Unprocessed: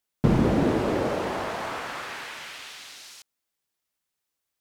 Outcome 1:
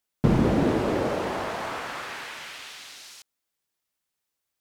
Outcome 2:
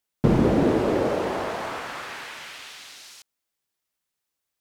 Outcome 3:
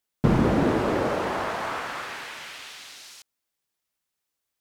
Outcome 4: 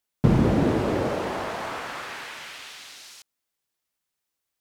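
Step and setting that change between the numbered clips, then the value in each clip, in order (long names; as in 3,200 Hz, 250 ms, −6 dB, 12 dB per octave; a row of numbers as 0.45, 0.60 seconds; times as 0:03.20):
dynamic equaliser, frequency: 3,400, 430, 1,300, 100 Hertz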